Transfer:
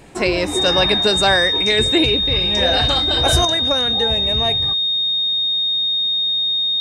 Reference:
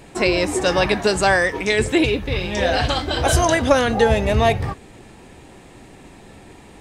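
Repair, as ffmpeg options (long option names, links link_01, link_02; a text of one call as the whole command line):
ffmpeg -i in.wav -af "bandreject=frequency=3700:width=30,asetnsamples=nb_out_samples=441:pad=0,asendcmd='3.45 volume volume 7dB',volume=0dB" out.wav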